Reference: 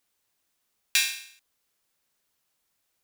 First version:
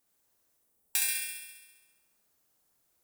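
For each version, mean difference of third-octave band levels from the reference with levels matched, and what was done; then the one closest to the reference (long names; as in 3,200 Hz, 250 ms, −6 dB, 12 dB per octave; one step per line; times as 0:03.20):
6.5 dB: gain on a spectral selection 0:00.58–0:01.08, 910–7,700 Hz −7 dB
parametric band 3,000 Hz −8.5 dB 2.3 octaves
flutter between parallel walls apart 11.5 metres, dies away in 1.2 s
level +2 dB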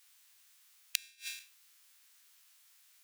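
9.0 dB: peak hold with a decay on every bin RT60 0.35 s
high-pass filter 1,500 Hz 12 dB per octave
brickwall limiter −13.5 dBFS, peak gain reduction 10 dB
gate with flip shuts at −23 dBFS, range −39 dB
level +10.5 dB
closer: first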